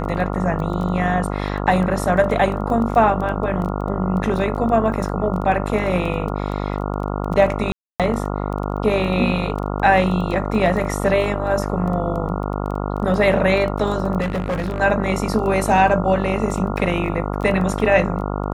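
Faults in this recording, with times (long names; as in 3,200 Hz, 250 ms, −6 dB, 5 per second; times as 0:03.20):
mains buzz 50 Hz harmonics 28 −24 dBFS
surface crackle 11 per second −26 dBFS
0:07.72–0:08.00: drop-out 277 ms
0:14.20–0:14.80: clipping −18.5 dBFS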